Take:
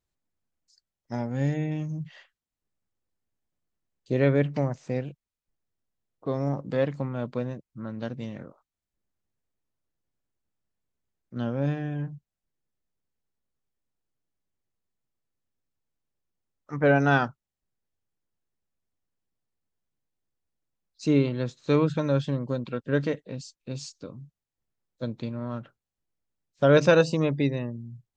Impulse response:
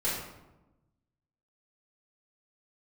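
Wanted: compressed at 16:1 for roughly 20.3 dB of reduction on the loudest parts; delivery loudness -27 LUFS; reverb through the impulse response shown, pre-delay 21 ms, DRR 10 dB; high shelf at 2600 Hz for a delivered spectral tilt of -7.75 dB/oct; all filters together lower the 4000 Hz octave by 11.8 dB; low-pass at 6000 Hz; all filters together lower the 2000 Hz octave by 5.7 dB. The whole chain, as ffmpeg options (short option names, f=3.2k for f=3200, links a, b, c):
-filter_complex "[0:a]lowpass=6k,equalizer=f=2k:t=o:g=-4,highshelf=f=2.6k:g=-8.5,equalizer=f=4k:t=o:g=-5.5,acompressor=threshold=-35dB:ratio=16,asplit=2[a][b];[1:a]atrim=start_sample=2205,adelay=21[c];[b][c]afir=irnorm=-1:irlink=0,volume=-18dB[d];[a][d]amix=inputs=2:normalize=0,volume=14.5dB"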